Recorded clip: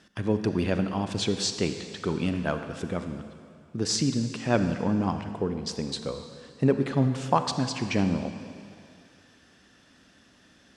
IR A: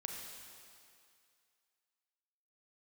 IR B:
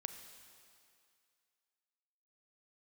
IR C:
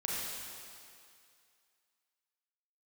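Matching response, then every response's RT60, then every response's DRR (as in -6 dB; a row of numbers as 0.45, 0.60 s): B; 2.3, 2.3, 2.3 s; 1.0, 7.5, -5.0 dB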